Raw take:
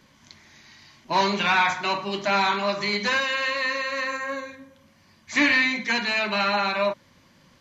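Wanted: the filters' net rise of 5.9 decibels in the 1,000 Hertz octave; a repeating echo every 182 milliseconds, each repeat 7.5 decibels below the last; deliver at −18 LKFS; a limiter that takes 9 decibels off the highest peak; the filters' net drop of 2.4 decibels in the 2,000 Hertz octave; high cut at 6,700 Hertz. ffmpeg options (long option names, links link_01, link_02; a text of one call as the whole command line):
ffmpeg -i in.wav -af "lowpass=6700,equalizer=frequency=1000:width_type=o:gain=8,equalizer=frequency=2000:width_type=o:gain=-5.5,alimiter=limit=-15dB:level=0:latency=1,aecho=1:1:182|364|546|728|910:0.422|0.177|0.0744|0.0312|0.0131,volume=6dB" out.wav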